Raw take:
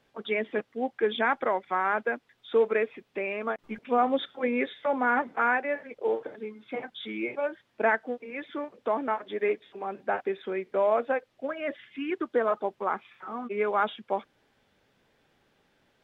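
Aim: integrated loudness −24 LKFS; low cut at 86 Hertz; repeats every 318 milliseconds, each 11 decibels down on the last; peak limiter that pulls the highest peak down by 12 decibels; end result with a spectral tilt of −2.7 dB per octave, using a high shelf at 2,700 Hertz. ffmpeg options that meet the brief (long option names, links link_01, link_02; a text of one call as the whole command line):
ffmpeg -i in.wav -af "highpass=86,highshelf=frequency=2700:gain=-7.5,alimiter=level_in=1.5dB:limit=-24dB:level=0:latency=1,volume=-1.5dB,aecho=1:1:318|636|954:0.282|0.0789|0.0221,volume=12dB" out.wav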